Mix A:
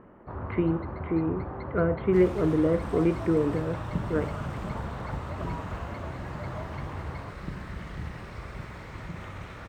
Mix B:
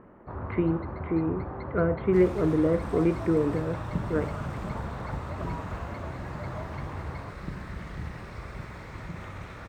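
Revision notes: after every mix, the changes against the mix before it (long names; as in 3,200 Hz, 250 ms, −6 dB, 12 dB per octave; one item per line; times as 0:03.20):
master: add parametric band 3,000 Hz −4 dB 0.22 octaves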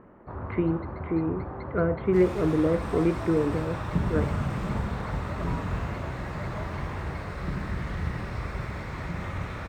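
second sound: send +8.5 dB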